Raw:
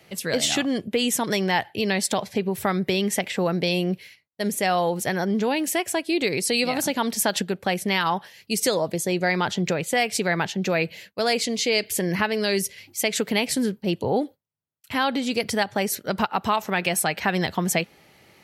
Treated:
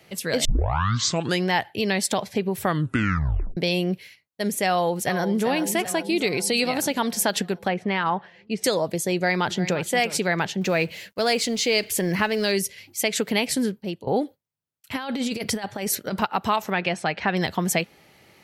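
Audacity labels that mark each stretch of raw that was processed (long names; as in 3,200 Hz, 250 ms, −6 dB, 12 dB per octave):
0.450000	0.450000	tape start 1.02 s
2.620000	2.620000	tape stop 0.95 s
4.670000	5.450000	delay throw 390 ms, feedback 65%, level −10 dB
6.060000	6.540000	notch filter 1,700 Hz
7.680000	8.640000	low-pass filter 2,200 Hz
9.150000	9.850000	delay throw 350 ms, feedback 25%, level −13.5 dB
10.610000	12.520000	mu-law and A-law mismatch coded by mu
13.640000	14.070000	fade out, to −15 dB
14.960000	16.220000	compressor whose output falls as the input rises −26 dBFS, ratio −0.5
16.720000	17.370000	Gaussian smoothing sigma 1.6 samples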